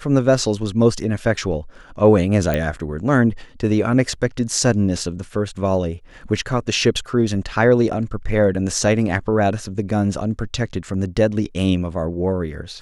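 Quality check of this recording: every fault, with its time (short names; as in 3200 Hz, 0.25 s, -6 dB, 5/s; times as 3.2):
2.54 pop -8 dBFS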